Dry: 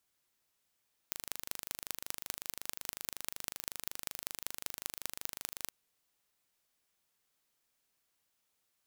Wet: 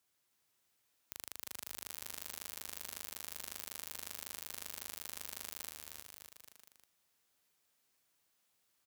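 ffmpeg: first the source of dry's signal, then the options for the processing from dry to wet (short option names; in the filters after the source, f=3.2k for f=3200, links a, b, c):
-f lavfi -i "aevalsrc='0.422*eq(mod(n,1736),0)*(0.5+0.5*eq(mod(n,8680),0))':d=4.58:s=44100"
-filter_complex "[0:a]highpass=56,alimiter=limit=-16.5dB:level=0:latency=1:release=73,asplit=2[a][b];[b]aecho=0:1:310|573.5|797.5|987.9|1150:0.631|0.398|0.251|0.158|0.1[c];[a][c]amix=inputs=2:normalize=0"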